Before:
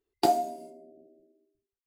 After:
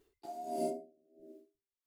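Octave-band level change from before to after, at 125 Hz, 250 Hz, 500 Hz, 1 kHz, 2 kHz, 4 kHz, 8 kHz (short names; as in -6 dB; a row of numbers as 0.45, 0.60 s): -8.5 dB, -8.0 dB, -7.5 dB, -14.0 dB, under -15 dB, -19.0 dB, -10.0 dB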